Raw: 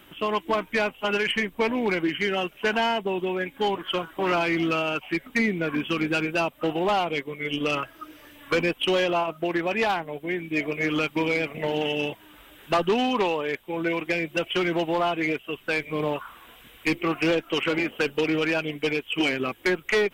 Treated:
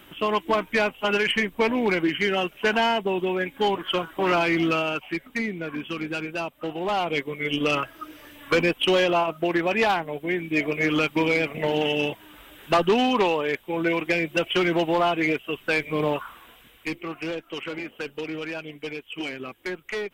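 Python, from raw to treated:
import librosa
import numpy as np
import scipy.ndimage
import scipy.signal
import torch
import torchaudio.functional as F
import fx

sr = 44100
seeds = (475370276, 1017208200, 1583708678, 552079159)

y = fx.gain(x, sr, db=fx.line((4.69, 2.0), (5.47, -5.0), (6.77, -5.0), (7.17, 2.5), (16.21, 2.5), (17.06, -8.0)))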